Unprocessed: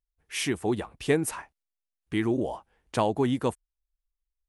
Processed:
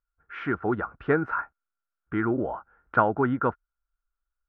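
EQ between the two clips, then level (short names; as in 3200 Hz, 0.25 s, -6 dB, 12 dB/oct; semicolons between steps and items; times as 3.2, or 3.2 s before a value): synth low-pass 1400 Hz, resonance Q 15; air absorption 210 m; 0.0 dB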